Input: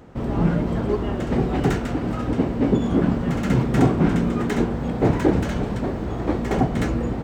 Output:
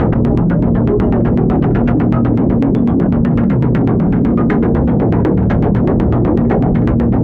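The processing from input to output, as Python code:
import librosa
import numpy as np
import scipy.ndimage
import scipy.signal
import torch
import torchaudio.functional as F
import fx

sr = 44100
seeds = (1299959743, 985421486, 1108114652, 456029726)

y = 10.0 ** (-13.5 / 20.0) * np.tanh(x / 10.0 ** (-13.5 / 20.0))
y = fx.peak_eq(y, sr, hz=150.0, db=5.0, octaves=1.7)
y = fx.doubler(y, sr, ms=26.0, db=-8.0)
y = fx.room_flutter(y, sr, wall_m=9.2, rt60_s=0.48, at=(3.56, 5.7))
y = fx.filter_lfo_lowpass(y, sr, shape='saw_down', hz=8.0, low_hz=290.0, high_hz=2400.0, q=1.0)
y = fx.env_flatten(y, sr, amount_pct=100)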